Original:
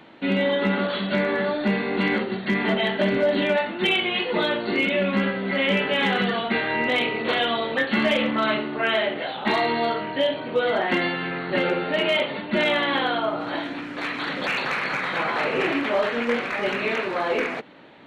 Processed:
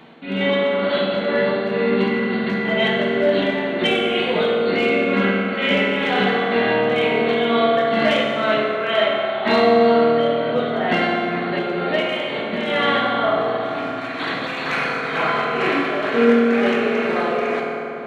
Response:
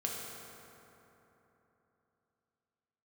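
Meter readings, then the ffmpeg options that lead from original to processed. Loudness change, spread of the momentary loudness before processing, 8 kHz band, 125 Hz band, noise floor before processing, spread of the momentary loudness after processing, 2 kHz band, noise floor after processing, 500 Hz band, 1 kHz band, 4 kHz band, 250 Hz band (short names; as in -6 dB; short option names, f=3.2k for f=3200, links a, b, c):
+4.0 dB, 5 LU, n/a, +2.5 dB, -33 dBFS, 7 LU, +2.0 dB, -27 dBFS, +6.0 dB, +5.0 dB, +1.5 dB, +4.0 dB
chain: -filter_complex "[0:a]tremolo=f=2.1:d=0.66,acontrast=71[a];[1:a]atrim=start_sample=2205[b];[a][b]afir=irnorm=-1:irlink=0,volume=-3.5dB"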